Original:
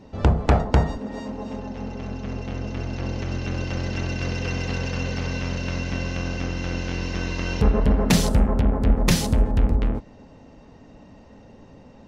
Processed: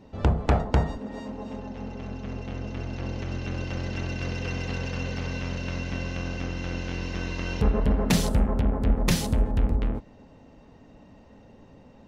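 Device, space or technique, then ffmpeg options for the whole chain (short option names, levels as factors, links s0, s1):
exciter from parts: -filter_complex "[0:a]asplit=2[s0][s1];[s1]highpass=f=3600:w=0.5412,highpass=f=3600:w=1.3066,asoftclip=type=tanh:threshold=0.0237,highpass=4200,volume=0.316[s2];[s0][s2]amix=inputs=2:normalize=0,volume=0.631"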